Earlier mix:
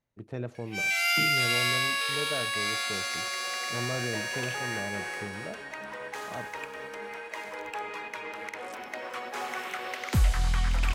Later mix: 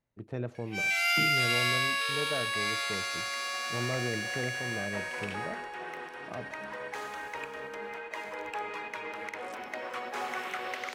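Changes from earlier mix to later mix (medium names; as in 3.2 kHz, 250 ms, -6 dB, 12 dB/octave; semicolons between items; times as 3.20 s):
second sound: entry +0.80 s; master: add treble shelf 4.3 kHz -5 dB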